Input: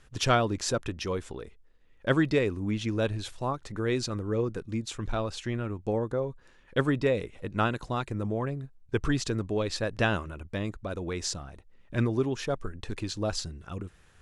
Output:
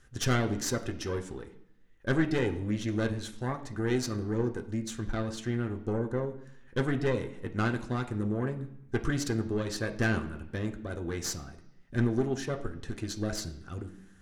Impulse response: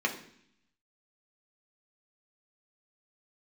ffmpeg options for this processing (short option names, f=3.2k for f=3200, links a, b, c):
-filter_complex "[0:a]highshelf=f=5.2k:g=6,aeval=exprs='(tanh(12.6*val(0)+0.7)-tanh(0.7))/12.6':c=same,asplit=2[a][b];[1:a]atrim=start_sample=2205,asetrate=37485,aresample=44100[c];[b][c]afir=irnorm=-1:irlink=0,volume=-12dB[d];[a][d]amix=inputs=2:normalize=0"